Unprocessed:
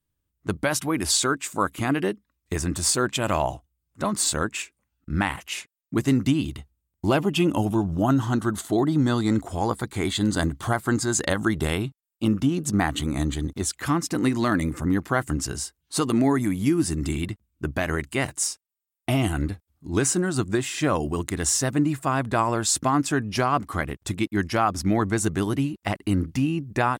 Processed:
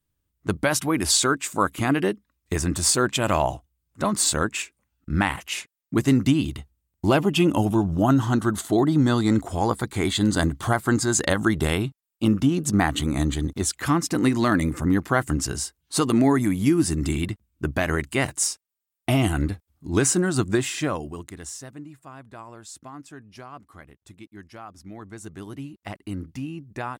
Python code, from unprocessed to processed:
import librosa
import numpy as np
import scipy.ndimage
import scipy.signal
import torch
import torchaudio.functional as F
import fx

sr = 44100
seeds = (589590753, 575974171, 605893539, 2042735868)

y = fx.gain(x, sr, db=fx.line((20.69, 2.0), (21.03, -7.0), (21.88, -19.0), (24.87, -19.0), (25.84, -9.0)))